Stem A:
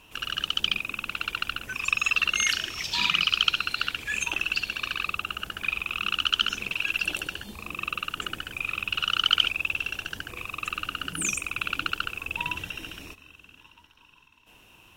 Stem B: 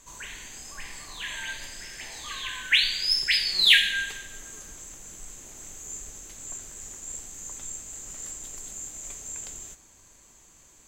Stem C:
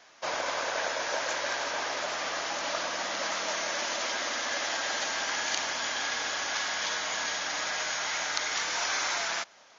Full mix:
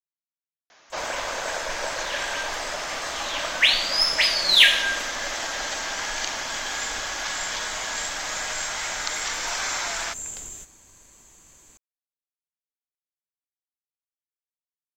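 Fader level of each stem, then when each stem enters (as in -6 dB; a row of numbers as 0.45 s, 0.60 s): mute, +2.5 dB, +1.5 dB; mute, 0.90 s, 0.70 s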